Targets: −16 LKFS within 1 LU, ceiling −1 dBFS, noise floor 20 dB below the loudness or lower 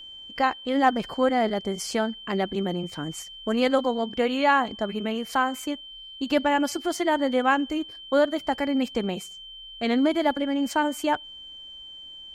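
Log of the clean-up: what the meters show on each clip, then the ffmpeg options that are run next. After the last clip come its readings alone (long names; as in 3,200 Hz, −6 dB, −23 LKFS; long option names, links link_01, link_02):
interfering tone 3,100 Hz; level of the tone −40 dBFS; integrated loudness −25.5 LKFS; sample peak −8.0 dBFS; target loudness −16.0 LKFS
→ -af "bandreject=frequency=3100:width=30"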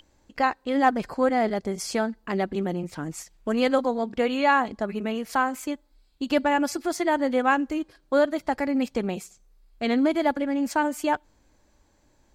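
interfering tone none found; integrated loudness −25.5 LKFS; sample peak −8.0 dBFS; target loudness −16.0 LKFS
→ -af "volume=9.5dB,alimiter=limit=-1dB:level=0:latency=1"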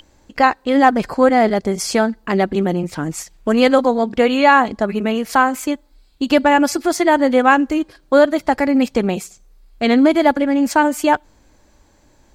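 integrated loudness −16.0 LKFS; sample peak −1.0 dBFS; background noise floor −54 dBFS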